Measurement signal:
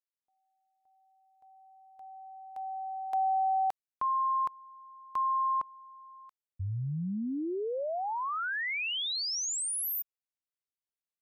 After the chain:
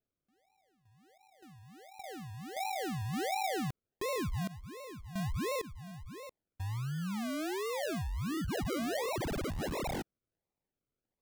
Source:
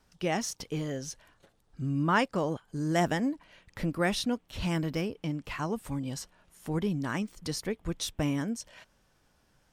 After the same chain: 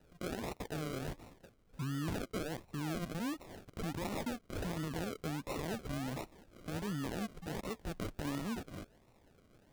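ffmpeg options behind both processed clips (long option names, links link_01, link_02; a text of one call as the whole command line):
ffmpeg -i in.wav -filter_complex "[0:a]acrossover=split=270|3100[link_01][link_02][link_03];[link_02]crystalizer=i=9.5:c=0[link_04];[link_01][link_04][link_03]amix=inputs=3:normalize=0,acompressor=threshold=-34dB:ratio=5:attack=0.43:release=48:knee=1:detection=rms,acrusher=samples=39:mix=1:aa=0.000001:lfo=1:lforange=23.4:lforate=1.4" out.wav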